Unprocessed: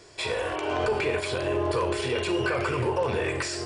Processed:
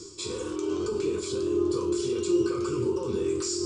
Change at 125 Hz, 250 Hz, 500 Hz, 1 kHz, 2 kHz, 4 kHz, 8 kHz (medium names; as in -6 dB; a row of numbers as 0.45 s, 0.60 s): -5.5 dB, +4.5 dB, -0.5 dB, -11.5 dB, -16.5 dB, -4.5 dB, +4.0 dB